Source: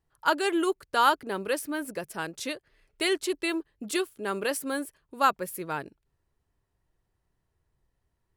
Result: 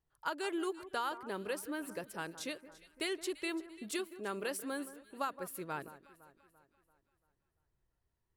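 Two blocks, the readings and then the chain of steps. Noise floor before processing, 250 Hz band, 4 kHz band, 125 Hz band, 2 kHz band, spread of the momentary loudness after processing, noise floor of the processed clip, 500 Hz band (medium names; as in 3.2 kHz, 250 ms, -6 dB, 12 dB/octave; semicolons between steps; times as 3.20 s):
-79 dBFS, -9.0 dB, -10.5 dB, -7.5 dB, -10.5 dB, 7 LU, -83 dBFS, -10.0 dB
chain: compression 10:1, threshold -25 dBFS, peak gain reduction 10 dB; on a send: echo whose repeats swap between lows and highs 170 ms, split 1.7 kHz, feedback 67%, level -14 dB; on the sum: trim -7.5 dB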